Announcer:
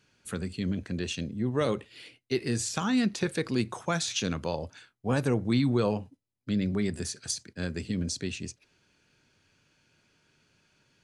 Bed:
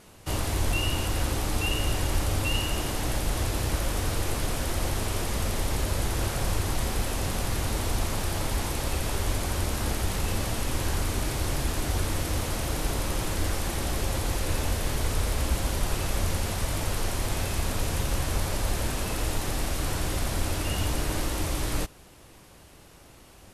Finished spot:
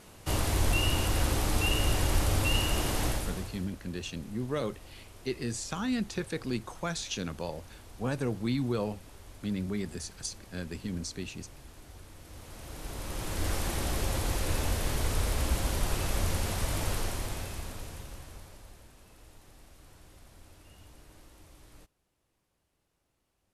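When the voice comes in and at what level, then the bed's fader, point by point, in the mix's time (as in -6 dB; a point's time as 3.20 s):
2.95 s, -5.0 dB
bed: 3.06 s -0.5 dB
3.75 s -22.5 dB
12.16 s -22.5 dB
13.52 s -2.5 dB
16.92 s -2.5 dB
18.89 s -26.5 dB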